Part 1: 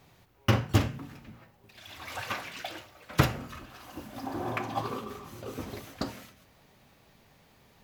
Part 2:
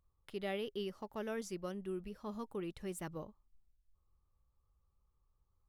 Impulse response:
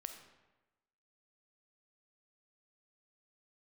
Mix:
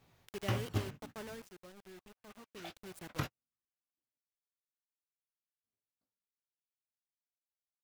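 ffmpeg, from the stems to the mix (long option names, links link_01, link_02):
-filter_complex "[0:a]flanger=delay=16.5:depth=3.8:speed=1.7,volume=-6dB,asplit=3[link_01][link_02][link_03];[link_01]atrim=end=4.18,asetpts=PTS-STARTPTS,afade=type=out:start_time=4.176:duration=0.004:curve=hsin[link_04];[link_02]atrim=start=4.18:end=5.64,asetpts=PTS-STARTPTS,volume=0[link_05];[link_03]atrim=start=5.64,asetpts=PTS-STARTPTS,afade=type=in:duration=0.004:curve=hsin[link_06];[link_04][link_05][link_06]concat=n=3:v=0:a=1[link_07];[1:a]acrusher=bits=6:mix=0:aa=0.000001,volume=5dB,afade=type=out:start_time=0.97:duration=0.55:silence=0.266073,afade=type=in:start_time=2.44:duration=0.69:silence=0.421697,asplit=2[link_08][link_09];[link_09]apad=whole_len=345635[link_10];[link_07][link_10]sidechaingate=range=-53dB:threshold=-51dB:ratio=16:detection=peak[link_11];[link_11][link_08]amix=inputs=2:normalize=0,alimiter=limit=-22dB:level=0:latency=1:release=351"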